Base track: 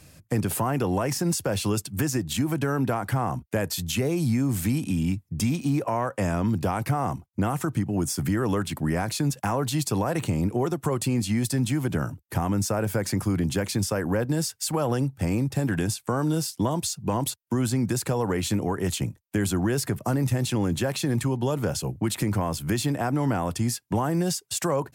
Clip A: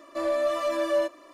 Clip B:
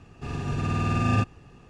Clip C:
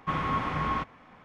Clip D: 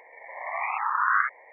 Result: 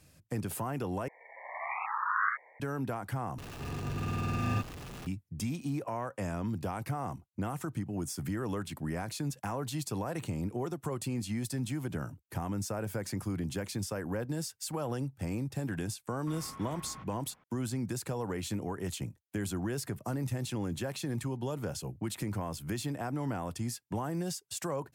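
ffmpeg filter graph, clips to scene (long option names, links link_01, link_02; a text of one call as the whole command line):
ffmpeg -i bed.wav -i cue0.wav -i cue1.wav -i cue2.wav -i cue3.wav -filter_complex "[0:a]volume=-10dB[link_01];[2:a]aeval=exprs='val(0)+0.5*0.0316*sgn(val(0))':channel_layout=same[link_02];[3:a]acompressor=threshold=-38dB:ratio=6:attack=28:release=41:knee=1:detection=peak[link_03];[link_01]asplit=3[link_04][link_05][link_06];[link_04]atrim=end=1.084[link_07];[4:a]atrim=end=1.52,asetpts=PTS-STARTPTS,volume=-7dB[link_08];[link_05]atrim=start=2.596:end=3.384[link_09];[link_02]atrim=end=1.69,asetpts=PTS-STARTPTS,volume=-9.5dB[link_10];[link_06]atrim=start=5.066[link_11];[link_03]atrim=end=1.24,asetpts=PTS-STARTPTS,volume=-12dB,afade=type=in:duration=0.004:curve=hsin,afade=type=out:start_time=1.236:duration=0.004:curve=hsin,adelay=714420S[link_12];[link_07][link_08]acrossfade=duration=0.004:curve1=hsin:curve2=hsin[link_13];[link_13][link_09]acrossfade=duration=0.004:curve1=hsin:curve2=hsin[link_14];[link_14][link_10]acrossfade=duration=0.004:curve1=hsin:curve2=hsin[link_15];[link_15][link_11]acrossfade=duration=0.004:curve1=hsin:curve2=hsin[link_16];[link_16][link_12]amix=inputs=2:normalize=0" out.wav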